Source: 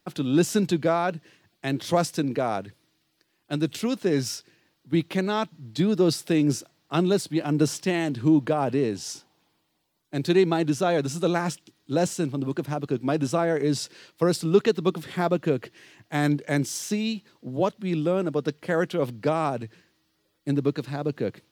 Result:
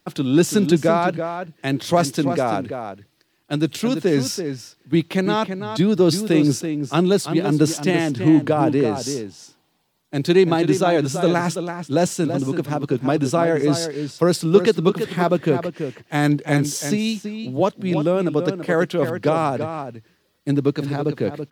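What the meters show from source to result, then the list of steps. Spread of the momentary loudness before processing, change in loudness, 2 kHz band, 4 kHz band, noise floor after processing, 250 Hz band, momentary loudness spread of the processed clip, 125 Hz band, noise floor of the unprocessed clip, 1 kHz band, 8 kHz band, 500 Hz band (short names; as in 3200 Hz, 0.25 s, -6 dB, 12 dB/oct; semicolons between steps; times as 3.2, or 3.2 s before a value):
10 LU, +5.5 dB, +5.5 dB, +5.5 dB, -65 dBFS, +5.5 dB, 11 LU, +5.5 dB, -72 dBFS, +5.5 dB, +5.0 dB, +5.5 dB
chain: outdoor echo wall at 57 m, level -8 dB; gain +5 dB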